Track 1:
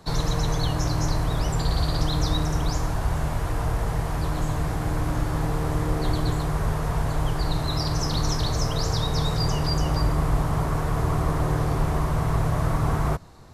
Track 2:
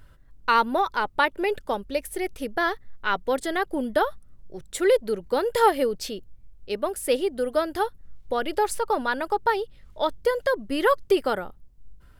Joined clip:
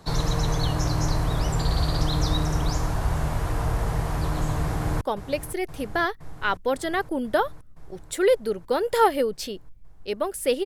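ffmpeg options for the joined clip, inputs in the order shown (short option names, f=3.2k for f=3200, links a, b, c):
-filter_complex "[0:a]apad=whole_dur=10.65,atrim=end=10.65,atrim=end=5.012[a];[1:a]atrim=start=1.628:end=7.27[b];[a][b]acrossfade=d=0.004:c1=hsin:c2=hsin,asplit=2[c][d];[d]afade=t=in:st=4.64:d=0.01,afade=t=out:st=5.01:d=0.01,aecho=0:1:520|1040|1560|2080|2600|3120|3640|4160|4680|5200|5720|6240:0.237137|0.177853|0.13339|0.100042|0.0750317|0.0562738|0.0422054|0.031654|0.0237405|0.0178054|0.013354|0.0100155[e];[c][e]amix=inputs=2:normalize=0"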